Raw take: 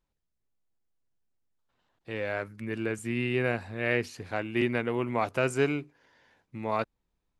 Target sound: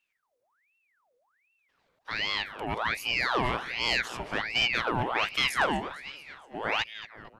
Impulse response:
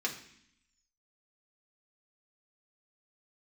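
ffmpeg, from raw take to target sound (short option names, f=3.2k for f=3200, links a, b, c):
-filter_complex "[0:a]asplit=7[a][b][c][d][e][f][g];[b]adelay=228,afreqshift=-36,volume=-16dB[h];[c]adelay=456,afreqshift=-72,volume=-20.6dB[i];[d]adelay=684,afreqshift=-108,volume=-25.2dB[j];[e]adelay=912,afreqshift=-144,volume=-29.7dB[k];[f]adelay=1140,afreqshift=-180,volume=-34.3dB[l];[g]adelay=1368,afreqshift=-216,volume=-38.9dB[m];[a][h][i][j][k][l][m]amix=inputs=7:normalize=0,aeval=exprs='0.266*(cos(1*acos(clip(val(0)/0.266,-1,1)))-cos(1*PI/2))+0.0422*(cos(5*acos(clip(val(0)/0.266,-1,1)))-cos(5*PI/2))':c=same,aeval=exprs='val(0)*sin(2*PI*1600*n/s+1600*0.7/1.3*sin(2*PI*1.3*n/s))':c=same"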